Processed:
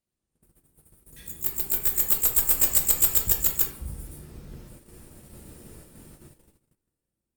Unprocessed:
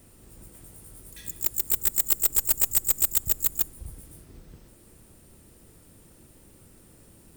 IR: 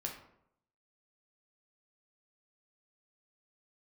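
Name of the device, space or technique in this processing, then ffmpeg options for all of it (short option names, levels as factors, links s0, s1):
speakerphone in a meeting room: -filter_complex "[1:a]atrim=start_sample=2205[s0];[0:a][s0]afir=irnorm=-1:irlink=0,dynaudnorm=f=390:g=9:m=5.62,agate=range=0.0282:threshold=0.00562:ratio=16:detection=peak,volume=0.841" -ar 48000 -c:a libopus -b:a 32k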